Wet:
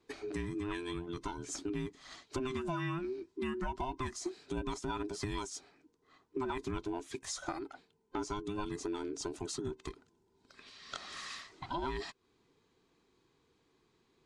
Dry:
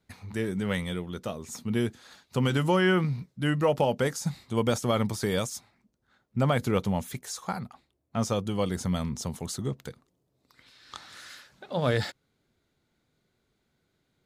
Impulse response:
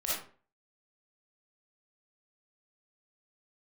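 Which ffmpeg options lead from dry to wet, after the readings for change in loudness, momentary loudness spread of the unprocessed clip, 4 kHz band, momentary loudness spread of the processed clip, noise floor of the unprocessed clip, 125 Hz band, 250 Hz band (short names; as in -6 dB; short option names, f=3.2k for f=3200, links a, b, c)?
-11.0 dB, 16 LU, -9.0 dB, 9 LU, -76 dBFS, -15.5 dB, -10.0 dB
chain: -af "afftfilt=real='real(if(between(b,1,1008),(2*floor((b-1)/24)+1)*24-b,b),0)':imag='imag(if(between(b,1,1008),(2*floor((b-1)/24)+1)*24-b,b),0)*if(between(b,1,1008),-1,1)':win_size=2048:overlap=0.75,lowpass=f=8.4k:w=0.5412,lowpass=f=8.4k:w=1.3066,acompressor=threshold=-39dB:ratio=4,volume=2dB"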